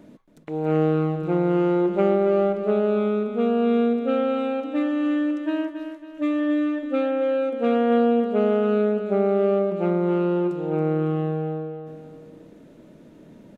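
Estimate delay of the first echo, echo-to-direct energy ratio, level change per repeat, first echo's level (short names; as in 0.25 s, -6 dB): 0.276 s, -7.5 dB, -7.5 dB, -8.5 dB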